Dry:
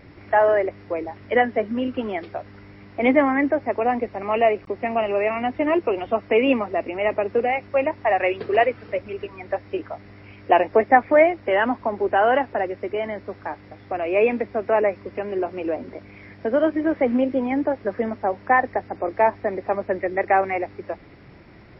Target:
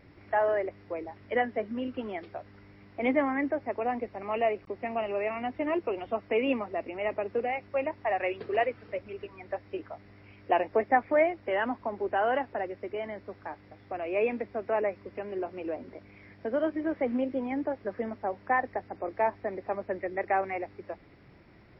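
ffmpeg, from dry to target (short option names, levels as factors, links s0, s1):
-af "volume=0.355"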